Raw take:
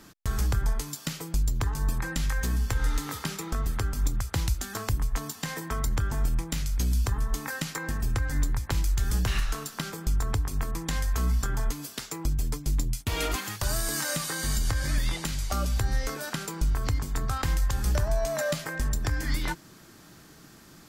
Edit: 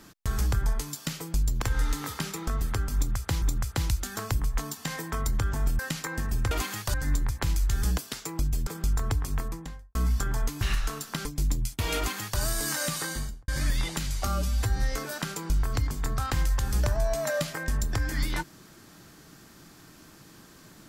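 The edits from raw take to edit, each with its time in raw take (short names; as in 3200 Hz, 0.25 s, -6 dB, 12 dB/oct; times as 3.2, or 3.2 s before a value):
1.62–2.67 cut
4–4.47 loop, 2 plays
6.37–7.5 cut
9.26–9.9 swap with 11.84–12.53
10.54–11.18 studio fade out
13.25–13.68 copy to 8.22
14.31–14.76 studio fade out
15.55–15.88 stretch 1.5×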